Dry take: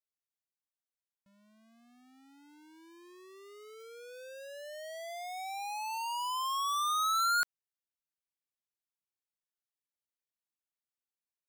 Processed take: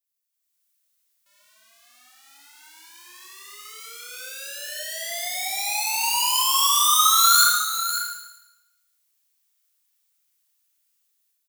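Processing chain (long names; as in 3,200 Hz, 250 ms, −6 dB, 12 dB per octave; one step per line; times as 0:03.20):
high-pass filter 920 Hz 12 dB per octave
spectral tilt +4 dB per octave
automatic gain control gain up to 11.5 dB
floating-point word with a short mantissa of 2 bits
single-tap delay 547 ms −10 dB
four-comb reverb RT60 0.94 s, combs from 25 ms, DRR −3 dB
level −5.5 dB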